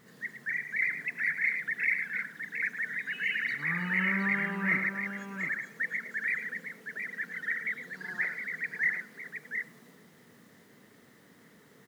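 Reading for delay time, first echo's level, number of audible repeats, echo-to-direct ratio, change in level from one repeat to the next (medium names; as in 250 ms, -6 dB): 108 ms, -10.5 dB, 2, -5.0 dB, no regular repeats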